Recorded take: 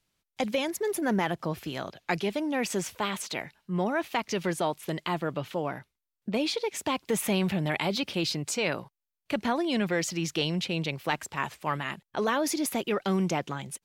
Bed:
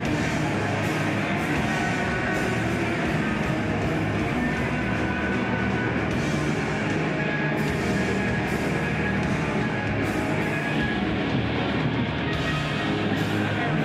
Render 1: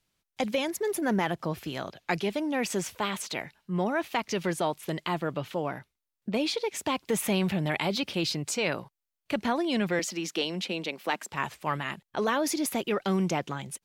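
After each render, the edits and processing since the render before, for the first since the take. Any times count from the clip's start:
0:09.99–0:11.32: Chebyshev high-pass filter 200 Hz, order 4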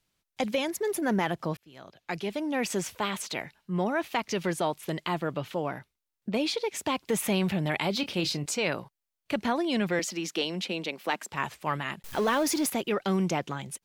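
0:01.57–0:02.57: fade in
0:07.95–0:08.46: double-tracking delay 28 ms −11.5 dB
0:12.04–0:12.70: converter with a step at zero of −34.5 dBFS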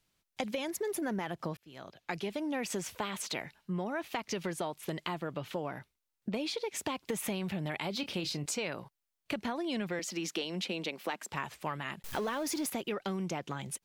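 downward compressor, threshold −32 dBFS, peak gain reduction 10 dB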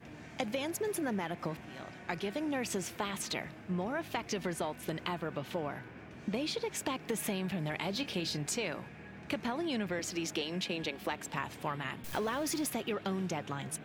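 mix in bed −25 dB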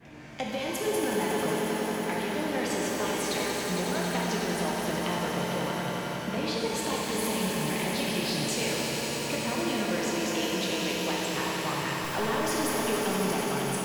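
echo that builds up and dies away 91 ms, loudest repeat 5, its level −10 dB
reverb with rising layers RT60 2.5 s, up +12 semitones, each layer −8 dB, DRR −2.5 dB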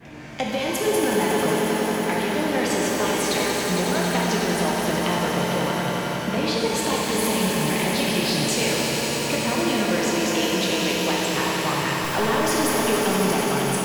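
level +7 dB

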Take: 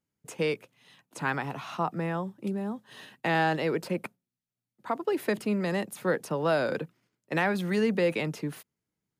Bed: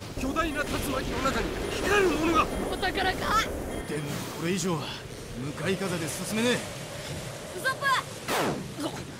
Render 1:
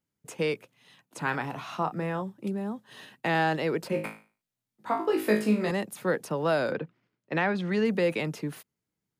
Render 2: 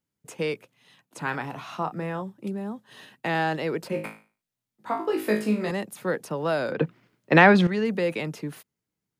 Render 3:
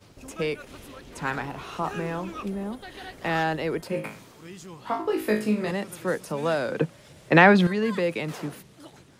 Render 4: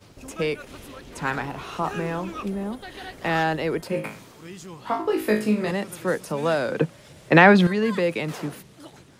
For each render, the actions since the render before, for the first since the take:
0:01.23–0:02.22: double-tracking delay 32 ms −10.5 dB; 0:03.90–0:05.71: flutter between parallel walls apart 3.2 metres, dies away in 0.36 s; 0:06.71–0:07.84: low-pass filter 2,900 Hz → 5,200 Hz
0:06.79–0:07.67: clip gain +12 dB
mix in bed −14.5 dB
level +2.5 dB; brickwall limiter −2 dBFS, peak gain reduction 1 dB

